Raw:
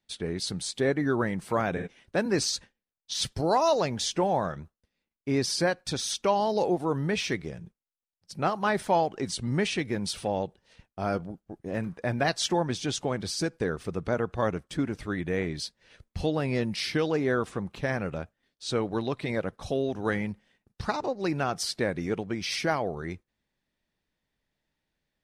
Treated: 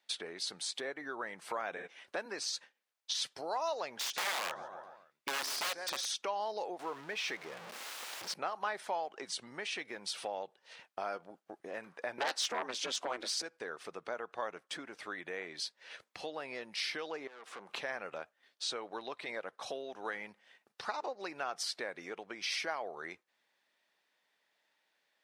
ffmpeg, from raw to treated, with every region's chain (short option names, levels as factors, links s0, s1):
-filter_complex "[0:a]asettb=1/sr,asplit=3[s0][s1][s2];[s0]atrim=end=3.984[s3];[s1]atrim=start=3.98:end=6.06,asetpts=PTS-STARTPTS,afade=t=in:d=0.004:c=qsin,afade=t=out:st=2.076:d=0.004:c=qsin,aecho=1:1:140|280|420|560:0.178|0.0782|0.0344|0.0151,atrim=end_sample=91728,aeval=exprs='(mod(15*val(0)+1,2)-1)/15':c=same[s4];[s2]atrim=start=6.056[s5];[s3][s4]acrossfade=d=0.004:c1=hsin:c2=qsin[s6];[s6][s5]acrossfade=d=0.004:c1=qsin:c2=hsin,asettb=1/sr,asplit=3[s7][s8][s9];[s7]atrim=end=6.794[s10];[s8]atrim=start=6.79:end=8.34,asetpts=PTS-STARTPTS,afade=t=in:d=0.004:c=qsin,afade=t=out:st=1.546:d=0.004:c=qsin,aeval=exprs='val(0)+0.5*0.02*sgn(val(0))':c=same,highpass=44,highshelf=f=7200:g=-7.5[s11];[s9]atrim=start=8.336[s12];[s10][s11]acrossfade=d=0.004:c1=hsin:c2=qsin[s13];[s13][s12]acrossfade=d=0.004:c1=qsin:c2=hsin,asettb=1/sr,asplit=3[s14][s15][s16];[s14]atrim=end=12.184[s17];[s15]atrim=start=12.18:end=13.42,asetpts=PTS-STARTPTS,afade=t=in:d=0.004:c=qsin,afade=t=out:st=1.236:d=0.004:c=qsin,aeval=exprs='val(0)*sin(2*PI*130*n/s)':c=same,aeval=exprs='0.251*sin(PI/2*3.16*val(0)/0.251)':c=same[s18];[s16]atrim=start=13.416[s19];[s17][s18]acrossfade=d=0.004:c1=hsin:c2=qsin[s20];[s20][s19]acrossfade=d=0.004:c1=qsin:c2=hsin,asettb=1/sr,asplit=3[s21][s22][s23];[s21]atrim=end=17.274[s24];[s22]atrim=start=17.27:end=17.69,asetpts=PTS-STARTPTS,afade=t=in:d=0.004:c=qsin,afade=t=out:st=0.416:d=0.004:c=qsin,highpass=200,acompressor=threshold=0.00708:ratio=2:attack=3.2:release=140:knee=1:detection=peak,aeval=exprs='(tanh(126*val(0)+0.65)-tanh(0.65))/126':c=same[s25];[s23]atrim=start=17.686[s26];[s24][s25]acrossfade=d=0.004:c1=hsin:c2=qsin[s27];[s27][s26]acrossfade=d=0.004:c1=qsin:c2=hsin,acompressor=threshold=0.00794:ratio=4,highpass=670,highshelf=f=6700:g=-8,volume=2.66"